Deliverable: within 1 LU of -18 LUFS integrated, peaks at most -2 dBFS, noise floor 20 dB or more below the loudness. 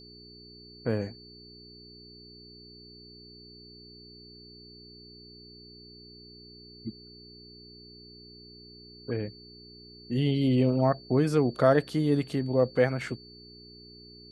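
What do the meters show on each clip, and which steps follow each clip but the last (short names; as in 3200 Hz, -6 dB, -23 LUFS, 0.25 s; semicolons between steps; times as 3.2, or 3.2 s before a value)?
hum 60 Hz; harmonics up to 420 Hz; hum level -51 dBFS; steady tone 4500 Hz; tone level -50 dBFS; loudness -27.0 LUFS; peak -8.0 dBFS; loudness target -18.0 LUFS
-> de-hum 60 Hz, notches 7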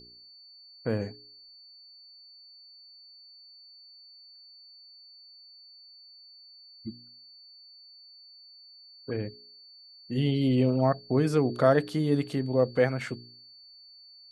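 hum none; steady tone 4500 Hz; tone level -50 dBFS
-> notch 4500 Hz, Q 30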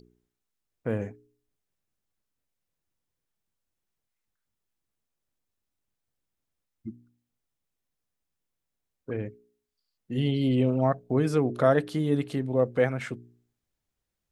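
steady tone none; loudness -27.0 LUFS; peak -8.0 dBFS; loudness target -18.0 LUFS
-> gain +9 dB; limiter -2 dBFS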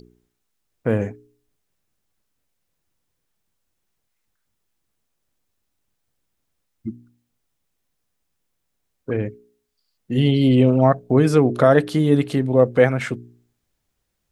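loudness -18.5 LUFS; peak -2.0 dBFS; noise floor -75 dBFS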